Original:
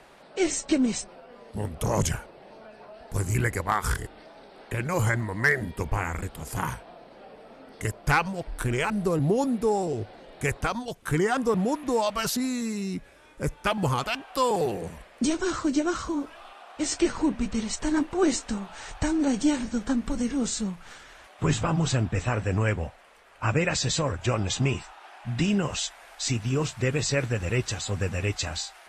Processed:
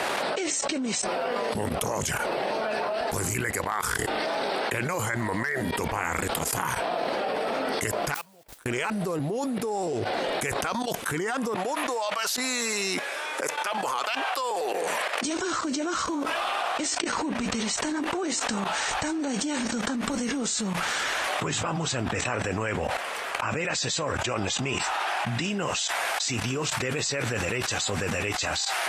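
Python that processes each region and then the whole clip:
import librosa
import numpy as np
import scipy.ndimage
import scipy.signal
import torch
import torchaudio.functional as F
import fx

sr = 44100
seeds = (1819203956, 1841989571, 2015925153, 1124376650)

y = fx.chain(x, sr, fx.gate_flip(shuts_db=-27.0, range_db=-40),
    fx.mod_noise(seeds[0], snr_db=13),
    fx.upward_expand(threshold_db=-47.0, expansion=1.5), at=(8.14, 8.66))
y = fx.chain(y, sr, fx.highpass(hz=520.0, slope=12),
    fx.high_shelf(hz=9900.0, db=-5.5), at=(11.55, 15.25))
y = fx.level_steps(y, sr, step_db=18)
y = fx.highpass(y, sr, hz=470.0, slope=6)
y = fx.env_flatten(y, sr, amount_pct=100)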